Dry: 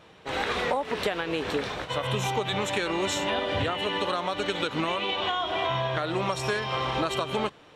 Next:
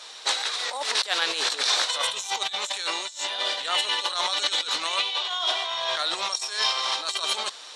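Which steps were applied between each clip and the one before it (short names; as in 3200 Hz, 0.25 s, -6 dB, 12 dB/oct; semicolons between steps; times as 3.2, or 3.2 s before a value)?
band shelf 6100 Hz +15.5 dB; negative-ratio compressor -29 dBFS, ratio -0.5; HPF 870 Hz 12 dB/oct; gain +4.5 dB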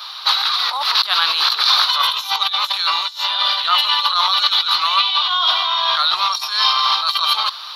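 EQ curve 100 Hz 0 dB, 260 Hz -18 dB, 460 Hz -20 dB, 1200 Hz +7 dB, 1800 Hz -7 dB, 4500 Hz +3 dB, 8100 Hz -29 dB, 12000 Hz +10 dB; in parallel at -2.5 dB: limiter -20 dBFS, peak gain reduction 10.5 dB; on the sum: gain +6 dB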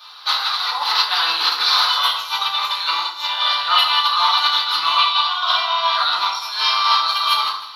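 thin delay 0.156 s, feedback 69%, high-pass 2200 Hz, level -13.5 dB; FDN reverb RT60 0.96 s, low-frequency decay 1.55×, high-frequency decay 0.45×, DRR -6 dB; upward expander 1.5:1, over -24 dBFS; gain -5 dB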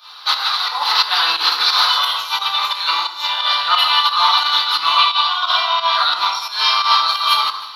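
pump 88 bpm, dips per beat 2, -9 dB, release 0.135 s; gain +2.5 dB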